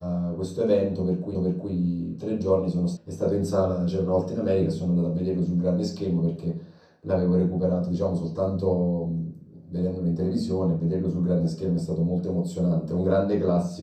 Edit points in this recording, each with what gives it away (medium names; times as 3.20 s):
1.35 s: repeat of the last 0.37 s
2.97 s: sound stops dead